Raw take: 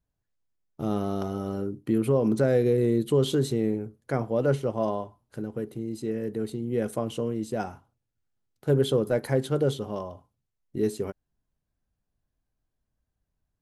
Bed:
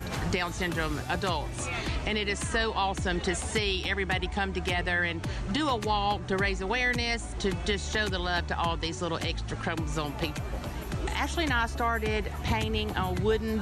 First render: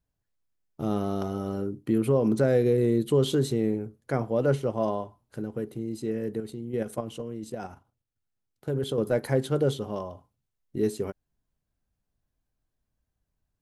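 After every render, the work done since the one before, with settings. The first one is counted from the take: 6.4–8.98 level quantiser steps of 9 dB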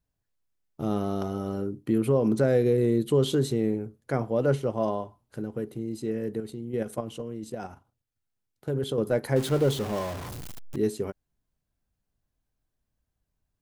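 9.36–10.76 zero-crossing step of -31.5 dBFS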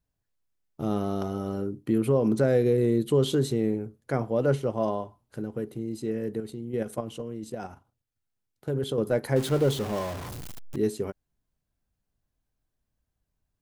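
nothing audible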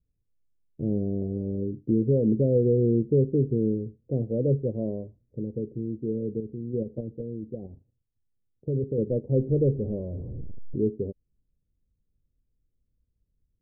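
elliptic low-pass 510 Hz, stop band 70 dB; low shelf 110 Hz +8.5 dB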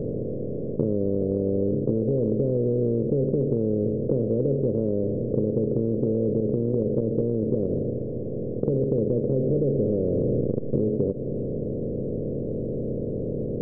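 per-bin compression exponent 0.2; compressor 5:1, threshold -20 dBFS, peak gain reduction 7.5 dB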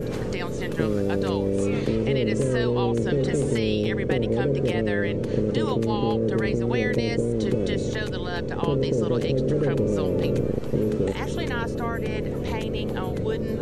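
add bed -4 dB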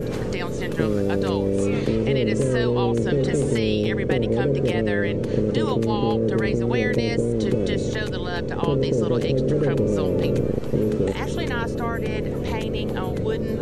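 gain +2 dB

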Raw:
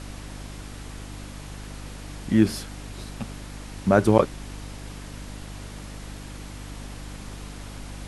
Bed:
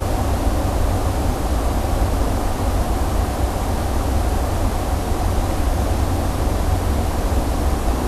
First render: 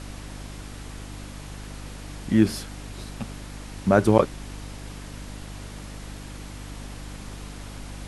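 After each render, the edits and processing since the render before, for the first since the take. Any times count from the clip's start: nothing audible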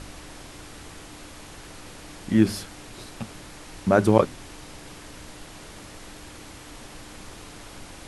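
de-hum 50 Hz, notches 5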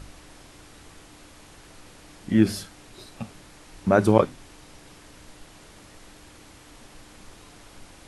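noise print and reduce 6 dB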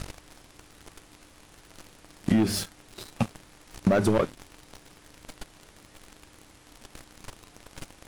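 sample leveller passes 3; compressor 12:1, threshold -19 dBFS, peak gain reduction 13 dB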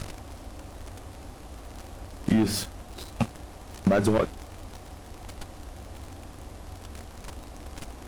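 add bed -23.5 dB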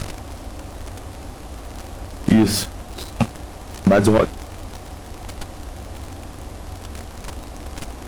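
gain +8 dB; limiter -3 dBFS, peak gain reduction 1.5 dB

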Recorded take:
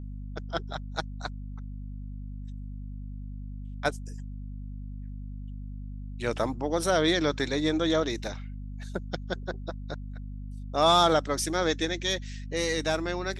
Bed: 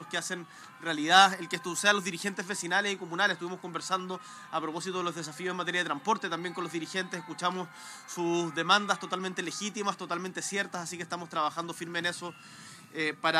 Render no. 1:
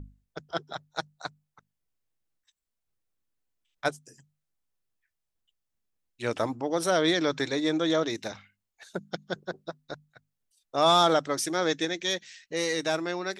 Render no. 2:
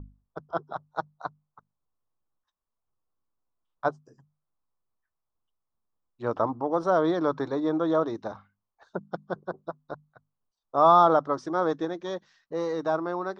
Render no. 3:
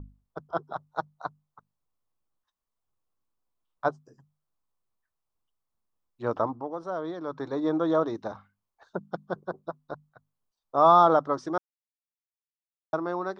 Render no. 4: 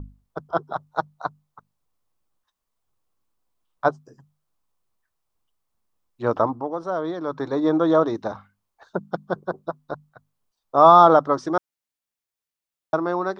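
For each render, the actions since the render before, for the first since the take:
notches 50/100/150/200/250 Hz
LPF 5300 Hz 24 dB/oct; resonant high shelf 1600 Hz -12.5 dB, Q 3
6.35–7.66 dip -10 dB, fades 0.41 s; 11.58–12.93 mute
gain +6.5 dB; limiter -2 dBFS, peak gain reduction 1 dB

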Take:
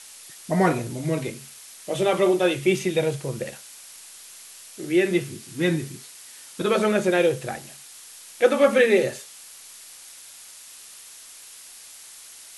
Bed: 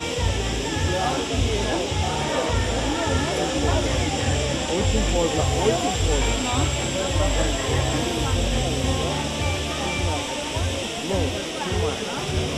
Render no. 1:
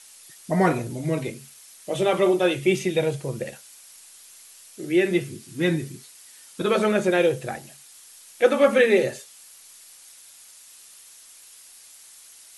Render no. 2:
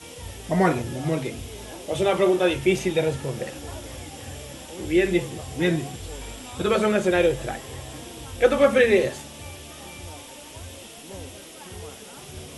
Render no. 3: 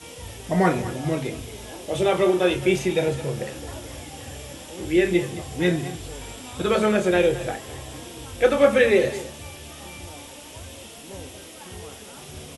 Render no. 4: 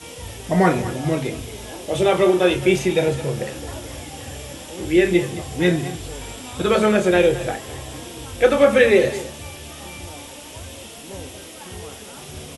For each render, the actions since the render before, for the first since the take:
denoiser 6 dB, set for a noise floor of -45 dBFS
add bed -15.5 dB
doubler 28 ms -11 dB; echo 0.214 s -15 dB
gain +3.5 dB; limiter -3 dBFS, peak gain reduction 2 dB

